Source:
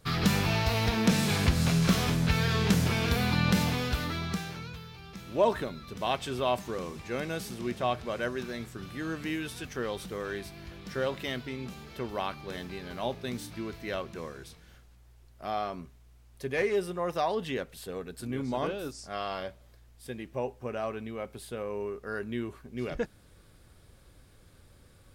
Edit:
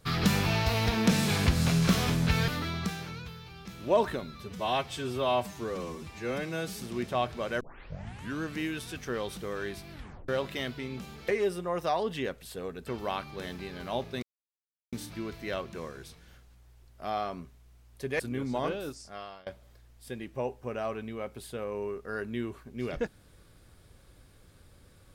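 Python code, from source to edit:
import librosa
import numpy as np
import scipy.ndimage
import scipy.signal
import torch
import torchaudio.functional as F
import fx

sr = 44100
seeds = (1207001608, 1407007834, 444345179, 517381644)

y = fx.edit(x, sr, fx.cut(start_s=2.48, length_s=1.48),
    fx.stretch_span(start_s=5.88, length_s=1.59, factor=1.5),
    fx.tape_start(start_s=8.29, length_s=0.81),
    fx.tape_stop(start_s=10.61, length_s=0.36),
    fx.insert_silence(at_s=13.33, length_s=0.7),
    fx.move(start_s=16.6, length_s=1.58, to_s=11.97),
    fx.fade_out_to(start_s=18.79, length_s=0.66, floor_db=-23.5), tone=tone)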